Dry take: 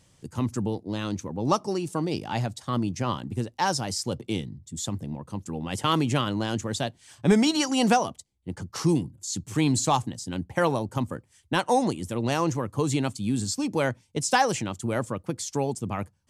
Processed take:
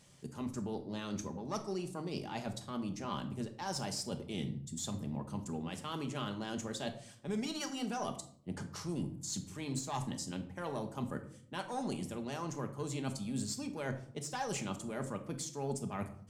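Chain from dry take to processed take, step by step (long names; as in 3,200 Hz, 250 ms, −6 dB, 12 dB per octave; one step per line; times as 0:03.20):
one-sided soft clipper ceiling −17.5 dBFS
low-shelf EQ 95 Hz −9 dB
reversed playback
downward compressor 10 to 1, threshold −35 dBFS, peak gain reduction 17.5 dB
reversed playback
rectangular room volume 940 cubic metres, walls furnished, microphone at 1.3 metres
level −1.5 dB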